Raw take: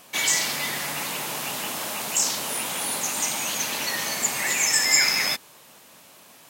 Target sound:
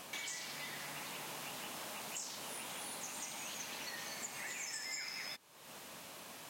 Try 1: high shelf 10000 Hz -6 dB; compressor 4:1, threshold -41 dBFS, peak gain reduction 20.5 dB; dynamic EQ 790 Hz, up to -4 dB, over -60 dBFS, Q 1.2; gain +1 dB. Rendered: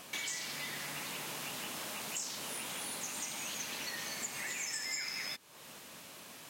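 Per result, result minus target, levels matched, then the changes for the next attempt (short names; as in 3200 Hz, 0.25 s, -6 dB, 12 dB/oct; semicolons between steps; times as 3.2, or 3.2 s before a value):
compressor: peak gain reduction -5 dB; 1000 Hz band -3.0 dB
change: compressor 4:1, threshold -47.5 dBFS, peak gain reduction 25.5 dB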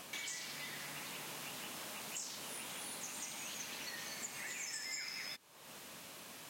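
1000 Hz band -2.5 dB
remove: dynamic EQ 790 Hz, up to -4 dB, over -60 dBFS, Q 1.2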